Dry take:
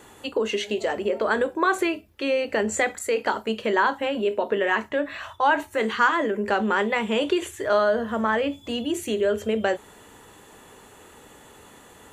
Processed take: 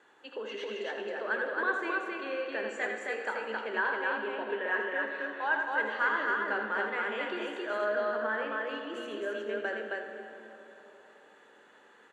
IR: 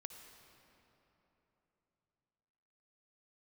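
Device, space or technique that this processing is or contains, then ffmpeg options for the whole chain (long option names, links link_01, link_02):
station announcement: -filter_complex "[0:a]highpass=320,lowpass=4300,equalizer=frequency=1600:width_type=o:width=0.34:gain=10,aecho=1:1:81.63|268.2:0.447|0.794[link_01];[1:a]atrim=start_sample=2205[link_02];[link_01][link_02]afir=irnorm=-1:irlink=0,volume=-8.5dB"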